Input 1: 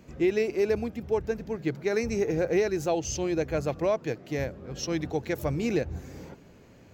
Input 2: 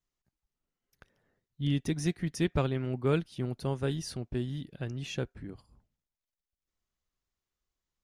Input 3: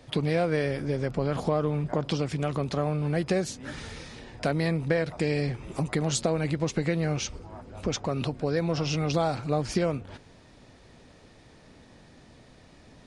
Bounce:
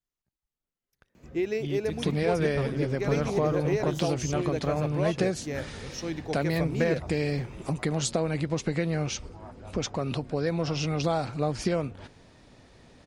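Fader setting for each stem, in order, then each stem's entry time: −4.0, −5.0, −1.0 decibels; 1.15, 0.00, 1.90 seconds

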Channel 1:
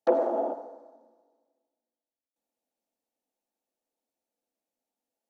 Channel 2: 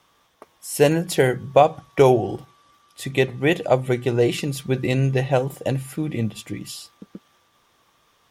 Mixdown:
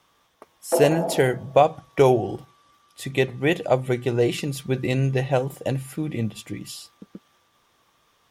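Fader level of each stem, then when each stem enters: +1.0, −2.0 decibels; 0.65, 0.00 seconds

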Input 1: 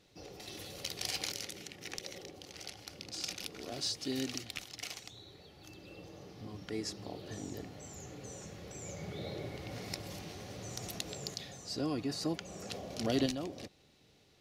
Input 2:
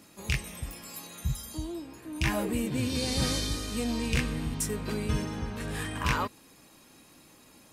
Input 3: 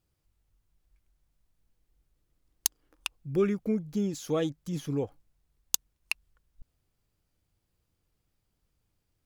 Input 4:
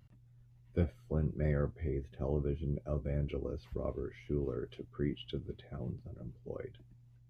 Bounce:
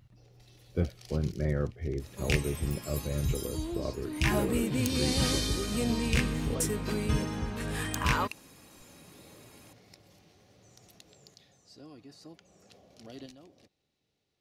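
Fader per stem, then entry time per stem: −15.0, +0.5, −12.0, +2.5 decibels; 0.00, 2.00, 2.20, 0.00 seconds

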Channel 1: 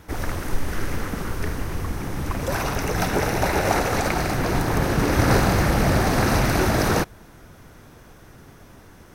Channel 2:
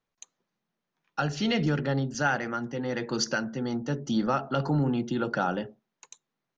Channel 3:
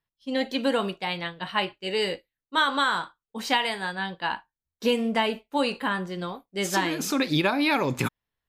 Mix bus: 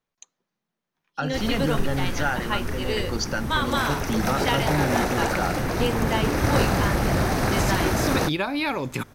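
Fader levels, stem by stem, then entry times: −3.0, 0.0, −2.5 decibels; 1.25, 0.00, 0.95 seconds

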